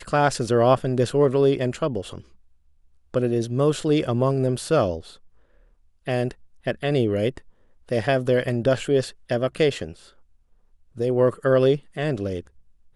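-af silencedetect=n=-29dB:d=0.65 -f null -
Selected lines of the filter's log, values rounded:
silence_start: 2.18
silence_end: 3.14 | silence_duration: 0.97
silence_start: 5.00
silence_end: 6.08 | silence_duration: 1.07
silence_start: 9.91
silence_end: 10.99 | silence_duration: 1.08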